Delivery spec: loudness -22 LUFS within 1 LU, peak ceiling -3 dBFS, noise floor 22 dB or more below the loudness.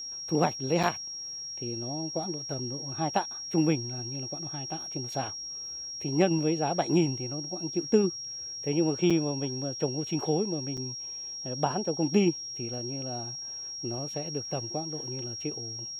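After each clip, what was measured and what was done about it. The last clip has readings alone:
dropouts 3; longest dropout 5.8 ms; steady tone 5600 Hz; tone level -36 dBFS; loudness -30.0 LUFS; peak -10.5 dBFS; loudness target -22.0 LUFS
-> interpolate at 0.83/9.1/10.77, 5.8 ms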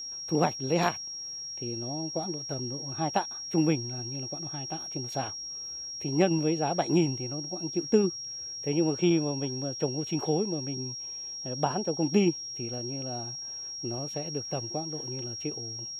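dropouts 0; steady tone 5600 Hz; tone level -36 dBFS
-> notch 5600 Hz, Q 30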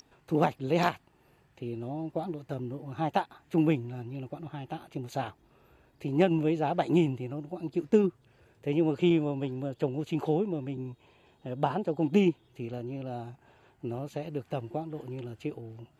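steady tone none; loudness -31.0 LUFS; peak -11.0 dBFS; loudness target -22.0 LUFS
-> gain +9 dB; limiter -3 dBFS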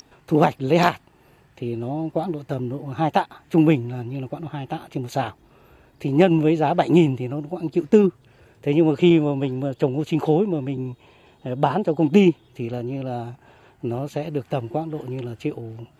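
loudness -22.0 LUFS; peak -3.0 dBFS; noise floor -56 dBFS

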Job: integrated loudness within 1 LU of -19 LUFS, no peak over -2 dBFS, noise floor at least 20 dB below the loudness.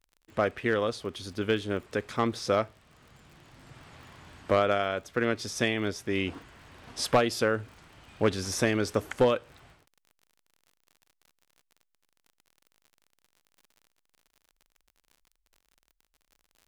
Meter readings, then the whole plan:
ticks 52/s; loudness -29.0 LUFS; peak -14.0 dBFS; loudness target -19.0 LUFS
-> de-click; gain +10 dB

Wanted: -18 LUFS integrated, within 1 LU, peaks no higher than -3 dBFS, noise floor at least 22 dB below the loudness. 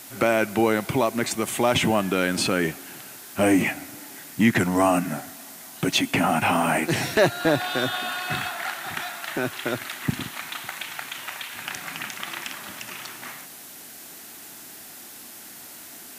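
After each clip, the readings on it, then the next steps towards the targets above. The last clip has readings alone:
noise floor -43 dBFS; noise floor target -47 dBFS; loudness -24.5 LUFS; peak -5.0 dBFS; loudness target -18.0 LUFS
-> denoiser 6 dB, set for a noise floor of -43 dBFS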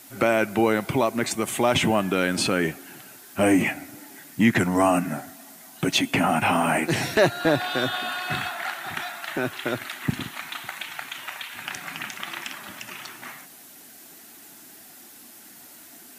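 noise floor -47 dBFS; loudness -24.5 LUFS; peak -5.5 dBFS; loudness target -18.0 LUFS
-> gain +6.5 dB; limiter -3 dBFS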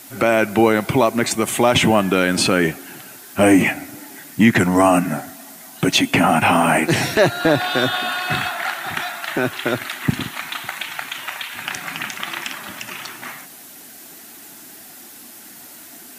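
loudness -18.5 LUFS; peak -3.0 dBFS; noise floor -41 dBFS

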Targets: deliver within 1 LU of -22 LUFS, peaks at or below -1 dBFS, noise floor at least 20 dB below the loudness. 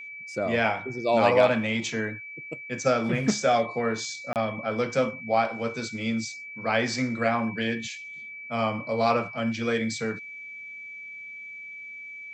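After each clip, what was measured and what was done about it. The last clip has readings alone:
dropouts 1; longest dropout 28 ms; steady tone 2300 Hz; tone level -38 dBFS; loudness -26.5 LUFS; peak -8.5 dBFS; loudness target -22.0 LUFS
-> interpolate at 4.33, 28 ms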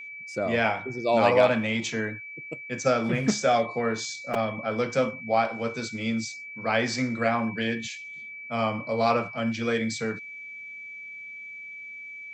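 dropouts 0; steady tone 2300 Hz; tone level -38 dBFS
-> notch 2300 Hz, Q 30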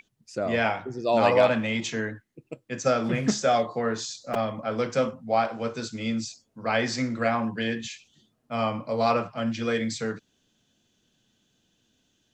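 steady tone none; loudness -26.5 LUFS; peak -8.5 dBFS; loudness target -22.0 LUFS
-> gain +4.5 dB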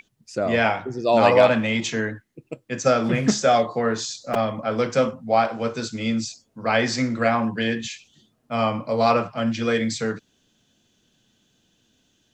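loudness -22.0 LUFS; peak -4.0 dBFS; noise floor -67 dBFS

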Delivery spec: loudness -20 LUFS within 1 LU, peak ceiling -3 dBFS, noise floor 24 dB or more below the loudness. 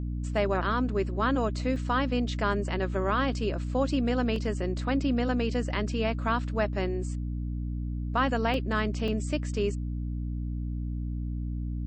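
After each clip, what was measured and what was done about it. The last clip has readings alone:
dropouts 4; longest dropout 2.1 ms; hum 60 Hz; harmonics up to 300 Hz; hum level -29 dBFS; loudness -29.5 LUFS; peak -13.5 dBFS; loudness target -20.0 LUFS
-> interpolate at 1.76/4.36/8.54/9.08, 2.1 ms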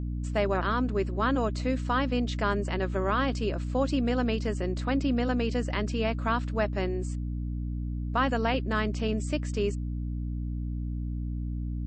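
dropouts 0; hum 60 Hz; harmonics up to 300 Hz; hum level -29 dBFS
-> de-hum 60 Hz, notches 5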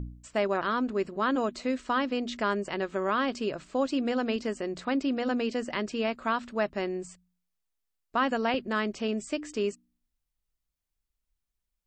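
hum none; loudness -30.0 LUFS; peak -15.5 dBFS; loudness target -20.0 LUFS
-> gain +10 dB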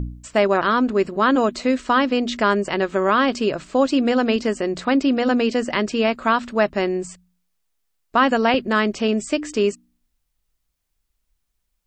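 loudness -20.0 LUFS; peak -5.5 dBFS; noise floor -74 dBFS

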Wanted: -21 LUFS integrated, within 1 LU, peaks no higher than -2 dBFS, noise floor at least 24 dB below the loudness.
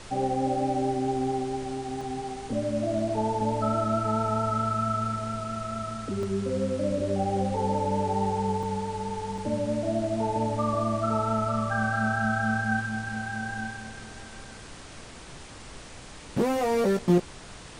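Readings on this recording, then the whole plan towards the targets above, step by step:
dropouts 4; longest dropout 2.4 ms; noise floor -44 dBFS; noise floor target -52 dBFS; loudness -28.0 LUFS; peak -11.0 dBFS; loudness target -21.0 LUFS
-> interpolate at 2.01/6.23/8.63/9.38, 2.4 ms; noise print and reduce 8 dB; gain +7 dB

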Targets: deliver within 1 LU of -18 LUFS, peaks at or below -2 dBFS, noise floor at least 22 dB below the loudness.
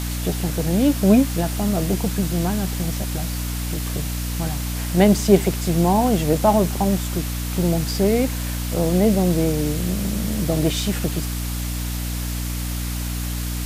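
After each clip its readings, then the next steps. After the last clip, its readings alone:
hum 60 Hz; harmonics up to 300 Hz; hum level -24 dBFS; noise floor -26 dBFS; noise floor target -44 dBFS; loudness -21.5 LUFS; peak -1.5 dBFS; loudness target -18.0 LUFS
-> notches 60/120/180/240/300 Hz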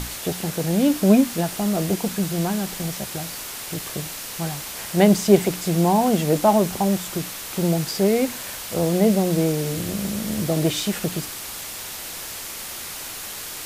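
hum none; noise floor -34 dBFS; noise floor target -45 dBFS
-> noise print and reduce 11 dB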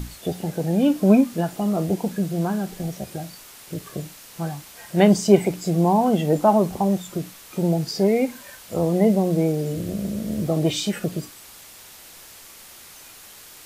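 noise floor -45 dBFS; loudness -22.0 LUFS; peak -2.0 dBFS; loudness target -18.0 LUFS
-> gain +4 dB; limiter -2 dBFS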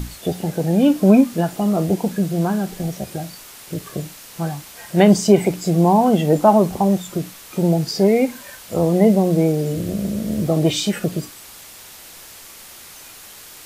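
loudness -18.0 LUFS; peak -2.0 dBFS; noise floor -41 dBFS

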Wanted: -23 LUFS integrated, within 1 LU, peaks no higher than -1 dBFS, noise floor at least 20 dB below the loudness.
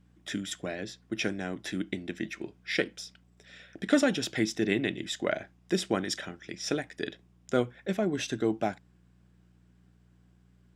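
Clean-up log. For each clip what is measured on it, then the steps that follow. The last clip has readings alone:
hum 60 Hz; harmonics up to 180 Hz; hum level -56 dBFS; loudness -32.0 LUFS; peak -10.5 dBFS; loudness target -23.0 LUFS
-> de-hum 60 Hz, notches 3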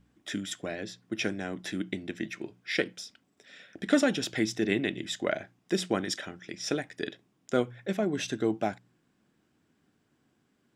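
hum none; loudness -32.0 LUFS; peak -10.5 dBFS; loudness target -23.0 LUFS
-> gain +9 dB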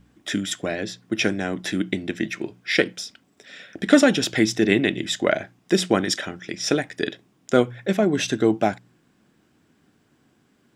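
loudness -23.0 LUFS; peak -1.5 dBFS; noise floor -63 dBFS

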